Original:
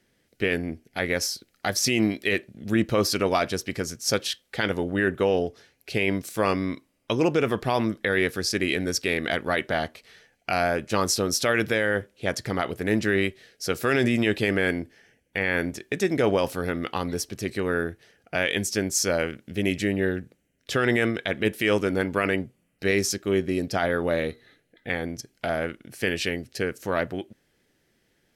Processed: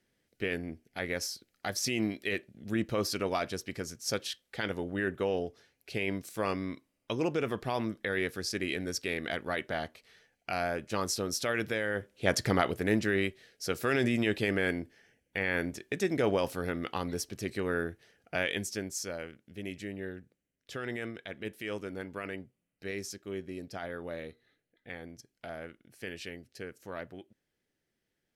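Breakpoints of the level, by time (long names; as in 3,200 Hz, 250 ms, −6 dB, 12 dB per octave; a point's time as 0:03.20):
0:11.94 −8.5 dB
0:12.40 +2 dB
0:13.10 −6 dB
0:18.40 −6 dB
0:19.17 −15 dB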